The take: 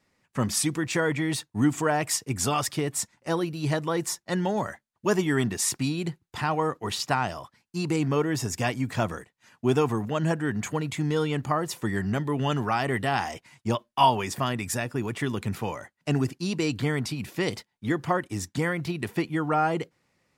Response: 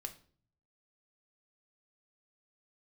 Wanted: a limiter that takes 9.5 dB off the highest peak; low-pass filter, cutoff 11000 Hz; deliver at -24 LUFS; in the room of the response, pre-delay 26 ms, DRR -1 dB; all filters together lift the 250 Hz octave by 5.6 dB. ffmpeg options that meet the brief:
-filter_complex "[0:a]lowpass=11k,equalizer=f=250:t=o:g=7.5,alimiter=limit=-16.5dB:level=0:latency=1,asplit=2[a][b];[1:a]atrim=start_sample=2205,adelay=26[c];[b][c]afir=irnorm=-1:irlink=0,volume=3.5dB[d];[a][d]amix=inputs=2:normalize=0"

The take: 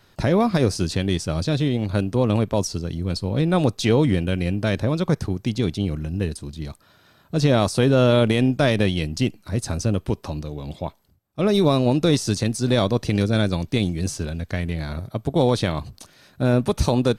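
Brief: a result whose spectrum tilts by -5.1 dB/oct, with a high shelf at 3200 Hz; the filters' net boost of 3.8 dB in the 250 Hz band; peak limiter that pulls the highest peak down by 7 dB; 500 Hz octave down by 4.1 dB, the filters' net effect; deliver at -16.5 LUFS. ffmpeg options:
-af "equalizer=f=250:t=o:g=6.5,equalizer=f=500:t=o:g=-7.5,highshelf=f=3.2k:g=8.5,volume=6dB,alimiter=limit=-6dB:level=0:latency=1"

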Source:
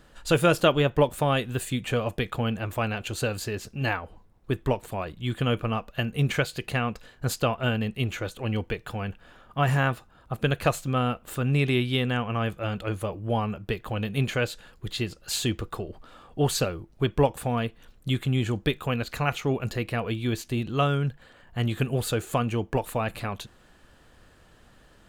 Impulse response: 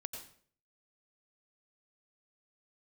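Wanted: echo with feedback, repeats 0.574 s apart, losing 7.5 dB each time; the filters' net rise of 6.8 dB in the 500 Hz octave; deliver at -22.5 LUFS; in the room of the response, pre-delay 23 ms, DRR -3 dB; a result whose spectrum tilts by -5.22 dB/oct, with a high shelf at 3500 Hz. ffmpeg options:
-filter_complex "[0:a]equalizer=f=500:t=o:g=8,highshelf=f=3.5k:g=3,aecho=1:1:574|1148|1722|2296|2870:0.422|0.177|0.0744|0.0312|0.0131,asplit=2[a][b];[1:a]atrim=start_sample=2205,adelay=23[c];[b][c]afir=irnorm=-1:irlink=0,volume=5dB[d];[a][d]amix=inputs=2:normalize=0,volume=-4dB"

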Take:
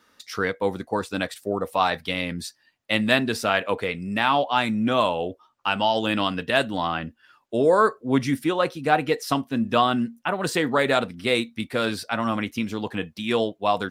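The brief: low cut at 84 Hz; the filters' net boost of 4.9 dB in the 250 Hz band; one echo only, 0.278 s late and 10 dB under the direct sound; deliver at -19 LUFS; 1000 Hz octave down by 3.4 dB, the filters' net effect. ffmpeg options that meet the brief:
-af "highpass=84,equalizer=f=250:t=o:g=6,equalizer=f=1k:t=o:g=-5,aecho=1:1:278:0.316,volume=3.5dB"

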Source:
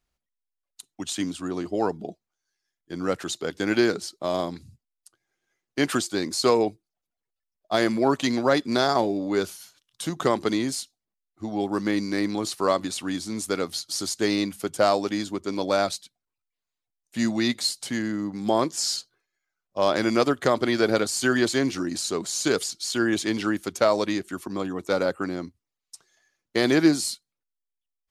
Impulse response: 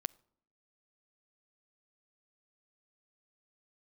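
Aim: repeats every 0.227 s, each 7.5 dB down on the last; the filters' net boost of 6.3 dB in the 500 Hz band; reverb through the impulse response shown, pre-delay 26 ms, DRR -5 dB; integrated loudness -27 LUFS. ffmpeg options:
-filter_complex "[0:a]equalizer=f=500:t=o:g=8,aecho=1:1:227|454|681|908|1135:0.422|0.177|0.0744|0.0312|0.0131,asplit=2[a][b];[1:a]atrim=start_sample=2205,adelay=26[c];[b][c]afir=irnorm=-1:irlink=0,volume=6dB[d];[a][d]amix=inputs=2:normalize=0,volume=-12dB"

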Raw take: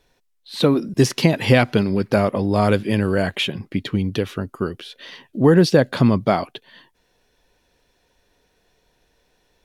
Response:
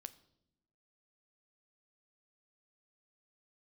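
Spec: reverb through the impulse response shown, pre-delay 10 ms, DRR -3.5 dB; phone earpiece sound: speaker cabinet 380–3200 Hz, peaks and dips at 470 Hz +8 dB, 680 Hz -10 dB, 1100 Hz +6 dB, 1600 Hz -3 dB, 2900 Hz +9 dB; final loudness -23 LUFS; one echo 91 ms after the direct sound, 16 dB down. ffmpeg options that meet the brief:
-filter_complex "[0:a]aecho=1:1:91:0.158,asplit=2[a][b];[1:a]atrim=start_sample=2205,adelay=10[c];[b][c]afir=irnorm=-1:irlink=0,volume=9dB[d];[a][d]amix=inputs=2:normalize=0,highpass=380,equalizer=f=470:t=q:w=4:g=8,equalizer=f=680:t=q:w=4:g=-10,equalizer=f=1.1k:t=q:w=4:g=6,equalizer=f=1.6k:t=q:w=4:g=-3,equalizer=f=2.9k:t=q:w=4:g=9,lowpass=f=3.2k:w=0.5412,lowpass=f=3.2k:w=1.3066,volume=-8dB"

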